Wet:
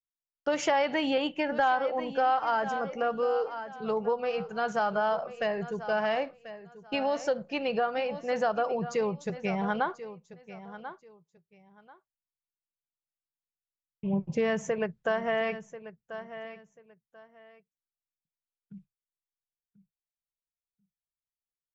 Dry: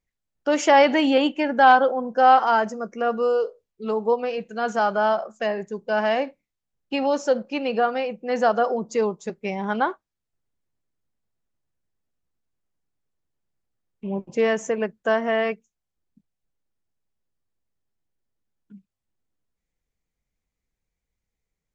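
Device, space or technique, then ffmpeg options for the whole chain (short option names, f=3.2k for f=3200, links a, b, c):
jukebox: -filter_complex "[0:a]agate=range=-33dB:threshold=-48dB:ratio=3:detection=peak,asettb=1/sr,asplit=3[a][b][c];[a]atrim=end=14.134[d];[b]atrim=start=14.13:end=14.69,asetpts=PTS-STARTPTS,afade=t=in:d=0.004:c=qsin,afade=t=out:st=0.556:d=0.004:c=qsin,equalizer=f=220:w=1.8:g=6[e];[c]atrim=start=14.686[f];[d][e]acrossfade=d=0.004:c1=hsin:c2=qsin[g];[g][f]acrossfade=d=0.004:c1=qsin:c2=hsin,lowpass=6.1k,lowshelf=f=190:t=q:w=3:g=7,aecho=1:1:1038|2076:0.158|0.0333,acompressor=threshold=-23dB:ratio=3,volume=-2dB"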